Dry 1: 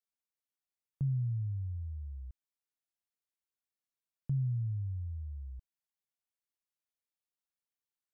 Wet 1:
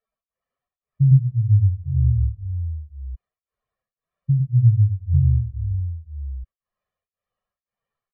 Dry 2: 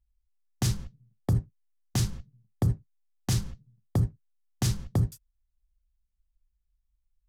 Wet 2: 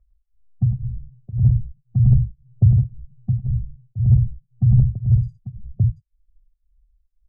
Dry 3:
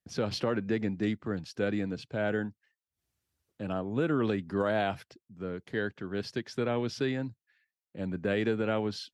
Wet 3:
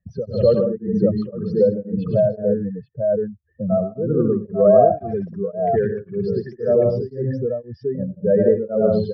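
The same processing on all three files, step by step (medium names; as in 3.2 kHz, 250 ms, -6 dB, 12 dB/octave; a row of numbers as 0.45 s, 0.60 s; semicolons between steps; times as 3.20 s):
spectral contrast enhancement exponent 2.7; low-pass 1.4 kHz 12 dB/octave; comb 1.7 ms, depth 76%; multi-tap echo 91/105/106/162/220/843 ms -13.5/-7.5/-4/-6/-13.5/-4 dB; tremolo of two beating tones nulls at 1.9 Hz; normalise loudness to -20 LUFS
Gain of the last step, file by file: +14.5 dB, +8.5 dB, +12.5 dB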